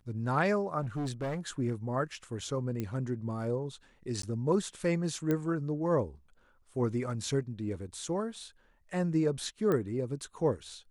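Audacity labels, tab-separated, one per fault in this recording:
0.810000	1.390000	clipped -30.5 dBFS
2.800000	2.800000	pop -22 dBFS
4.220000	4.230000	gap 13 ms
5.310000	5.310000	pop -18 dBFS
9.720000	9.720000	pop -19 dBFS

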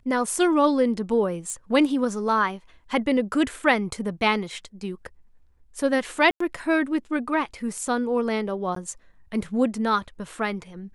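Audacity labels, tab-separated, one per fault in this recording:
1.500000	1.500000	pop -21 dBFS
6.310000	6.400000	gap 94 ms
8.750000	8.760000	gap 13 ms

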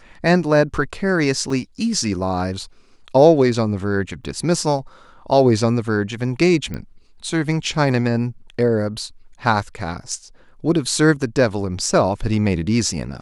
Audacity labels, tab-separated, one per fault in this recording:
1.500000	1.500000	gap 3.4 ms
4.240000	4.250000	gap 6.4 ms
6.740000	6.740000	pop -16 dBFS

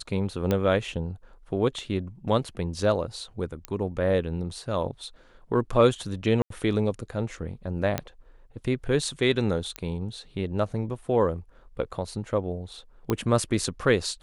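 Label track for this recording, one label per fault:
0.510000	0.510000	pop -12 dBFS
3.650000	3.650000	pop -17 dBFS
6.420000	6.500000	gap 83 ms
7.980000	7.980000	pop -12 dBFS
9.760000	9.760000	pop -15 dBFS
13.100000	13.100000	pop -12 dBFS

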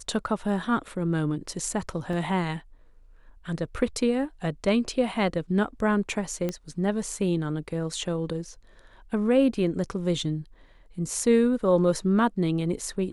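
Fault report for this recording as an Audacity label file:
2.130000	2.130000	gap 2.6 ms
6.490000	6.490000	pop -16 dBFS

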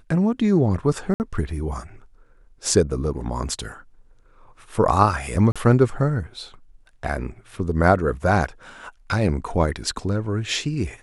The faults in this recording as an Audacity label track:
1.140000	1.200000	gap 59 ms
5.520000	5.560000	gap 36 ms

